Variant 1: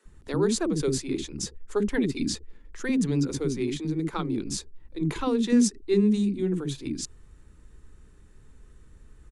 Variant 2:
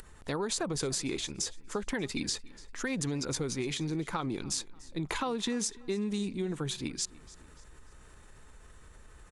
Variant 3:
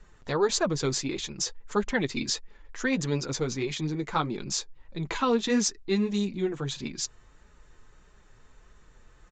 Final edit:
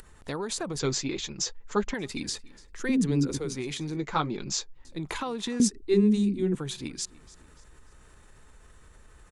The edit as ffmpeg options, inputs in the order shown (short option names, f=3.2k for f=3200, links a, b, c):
-filter_complex "[2:a]asplit=2[a][b];[0:a]asplit=2[c][d];[1:a]asplit=5[e][f][g][h][i];[e]atrim=end=0.792[j];[a]atrim=start=0.788:end=1.942[k];[f]atrim=start=1.938:end=2.8[l];[c]atrim=start=2.56:end=3.58[m];[g]atrim=start=3.34:end=3.972[n];[b]atrim=start=3.968:end=4.852[o];[h]atrim=start=4.848:end=5.602[p];[d]atrim=start=5.598:end=6.552[q];[i]atrim=start=6.548[r];[j][k]acrossfade=d=0.004:c1=hsin:c2=hsin[s];[s][l]acrossfade=d=0.004:c1=hsin:c2=hsin[t];[t][m]acrossfade=d=0.24:c1=tri:c2=tri[u];[u][n]acrossfade=d=0.24:c1=tri:c2=tri[v];[v][o]acrossfade=d=0.004:c1=hsin:c2=hsin[w];[w][p]acrossfade=d=0.004:c1=hsin:c2=hsin[x];[x][q]acrossfade=d=0.004:c1=hsin:c2=hsin[y];[y][r]acrossfade=d=0.004:c1=hsin:c2=hsin"